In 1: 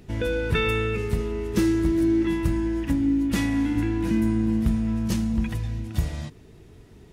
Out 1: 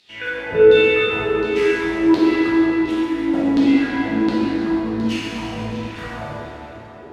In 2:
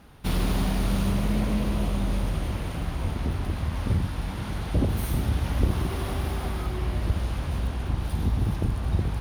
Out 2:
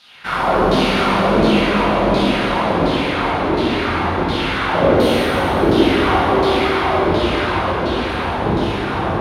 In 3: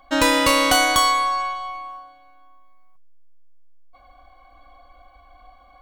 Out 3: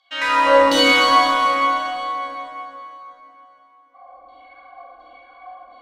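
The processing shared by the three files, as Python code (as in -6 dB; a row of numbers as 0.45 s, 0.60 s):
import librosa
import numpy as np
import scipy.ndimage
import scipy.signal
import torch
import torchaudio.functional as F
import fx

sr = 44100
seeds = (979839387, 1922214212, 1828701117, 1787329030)

p1 = fx.rider(x, sr, range_db=4, speed_s=0.5)
p2 = x + (p1 * librosa.db_to_amplitude(-3.0))
p3 = fx.filter_lfo_bandpass(p2, sr, shape='saw_down', hz=1.4, low_hz=290.0, high_hz=4200.0, q=3.7)
p4 = 10.0 ** (-16.0 / 20.0) * np.tanh(p3 / 10.0 ** (-16.0 / 20.0))
p5 = fx.rev_plate(p4, sr, seeds[0], rt60_s=3.6, hf_ratio=0.75, predelay_ms=0, drr_db=-8.5)
y = librosa.util.normalize(p5) * 10.0 ** (-2 / 20.0)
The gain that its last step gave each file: +5.5 dB, +14.5 dB, +0.5 dB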